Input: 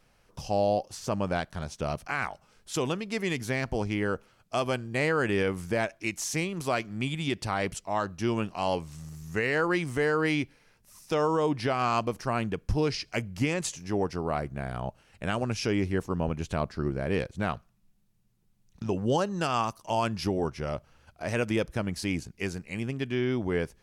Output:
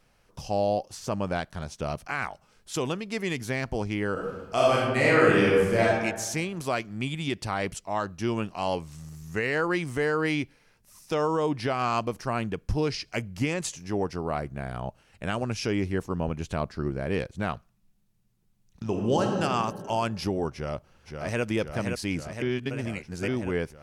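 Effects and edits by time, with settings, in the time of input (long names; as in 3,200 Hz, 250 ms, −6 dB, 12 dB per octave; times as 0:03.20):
0:04.12–0:05.98: thrown reverb, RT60 1.2 s, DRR −5.5 dB
0:18.85–0:19.40: thrown reverb, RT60 2.2 s, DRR 1.5 dB
0:20.52–0:21.43: delay throw 520 ms, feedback 75%, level −5 dB
0:22.42–0:23.28: reverse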